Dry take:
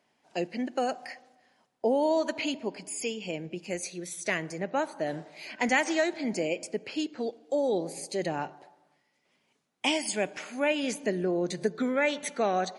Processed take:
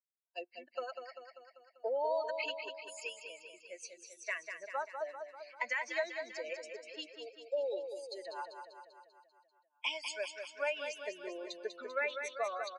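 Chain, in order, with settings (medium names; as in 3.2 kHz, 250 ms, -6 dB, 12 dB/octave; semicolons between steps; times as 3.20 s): expander on every frequency bin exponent 2; high-pass 610 Hz 24 dB/octave; compression 6:1, threshold -33 dBFS, peak gain reduction 10 dB; Butterworth band-stop 770 Hz, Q 5.3; distance through air 130 m; feedback delay 196 ms, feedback 58%, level -7 dB; trim +3 dB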